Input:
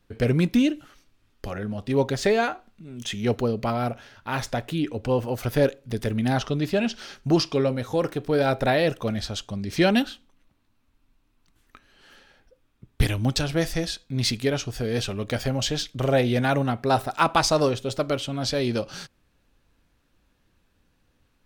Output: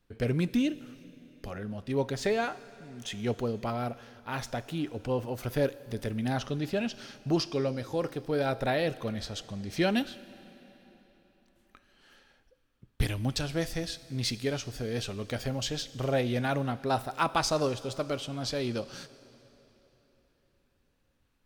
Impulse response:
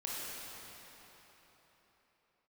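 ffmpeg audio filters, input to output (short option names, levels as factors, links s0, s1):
-filter_complex "[0:a]asplit=2[s0][s1];[s1]highshelf=f=4300:g=10[s2];[1:a]atrim=start_sample=2205[s3];[s2][s3]afir=irnorm=-1:irlink=0,volume=0.1[s4];[s0][s4]amix=inputs=2:normalize=0,volume=0.422"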